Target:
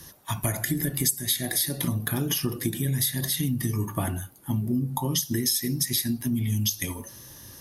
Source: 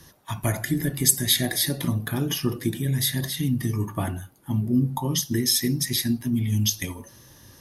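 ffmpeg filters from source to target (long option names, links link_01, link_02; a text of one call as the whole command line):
ffmpeg -i in.wav -af "highshelf=frequency=7000:gain=9,acompressor=threshold=-24dB:ratio=6,volume=1.5dB" out.wav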